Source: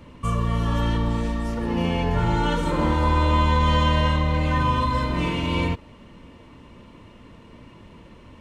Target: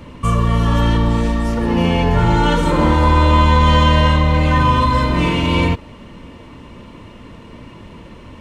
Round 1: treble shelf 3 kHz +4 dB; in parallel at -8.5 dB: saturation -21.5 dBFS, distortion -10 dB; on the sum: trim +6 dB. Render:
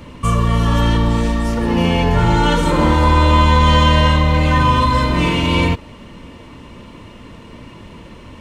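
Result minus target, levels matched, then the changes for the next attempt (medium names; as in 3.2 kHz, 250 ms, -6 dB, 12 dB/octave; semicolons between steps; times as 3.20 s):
8 kHz band +3.0 dB
remove: treble shelf 3 kHz +4 dB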